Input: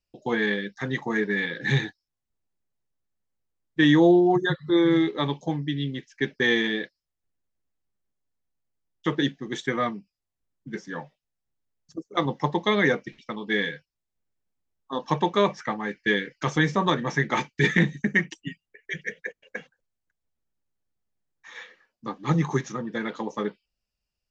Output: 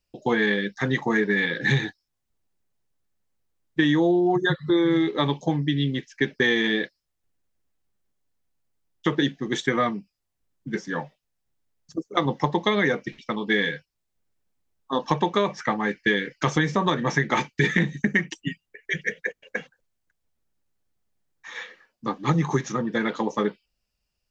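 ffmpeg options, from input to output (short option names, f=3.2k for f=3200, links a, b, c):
-af "acompressor=threshold=-23dB:ratio=6,volume=5.5dB"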